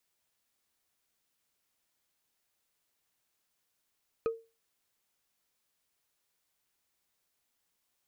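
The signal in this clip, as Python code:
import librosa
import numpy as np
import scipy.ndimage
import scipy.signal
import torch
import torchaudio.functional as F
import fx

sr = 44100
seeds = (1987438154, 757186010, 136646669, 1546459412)

y = fx.strike_wood(sr, length_s=0.45, level_db=-24.0, body='bar', hz=455.0, decay_s=0.29, tilt_db=9.0, modes=5)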